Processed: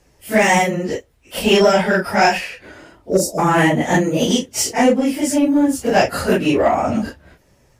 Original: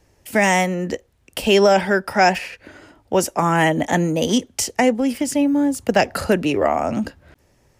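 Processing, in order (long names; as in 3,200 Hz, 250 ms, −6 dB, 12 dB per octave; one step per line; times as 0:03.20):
random phases in long frames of 100 ms
healed spectral selection 0:03.11–0:03.36, 690–3,700 Hz before
in parallel at −7 dB: gain into a clipping stage and back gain 15 dB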